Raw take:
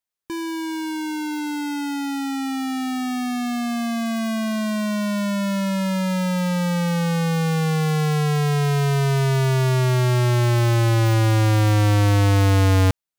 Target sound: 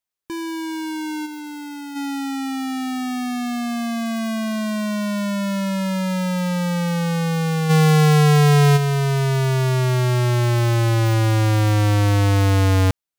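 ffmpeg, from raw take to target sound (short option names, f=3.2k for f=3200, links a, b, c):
-filter_complex "[0:a]asplit=3[a][b][c];[a]afade=t=out:st=1.25:d=0.02[d];[b]asoftclip=type=hard:threshold=-32.5dB,afade=t=in:st=1.25:d=0.02,afade=t=out:st=1.95:d=0.02[e];[c]afade=t=in:st=1.95:d=0.02[f];[d][e][f]amix=inputs=3:normalize=0,asplit=3[g][h][i];[g]afade=t=out:st=7.69:d=0.02[j];[h]acontrast=76,afade=t=in:st=7.69:d=0.02,afade=t=out:st=8.76:d=0.02[k];[i]afade=t=in:st=8.76:d=0.02[l];[j][k][l]amix=inputs=3:normalize=0"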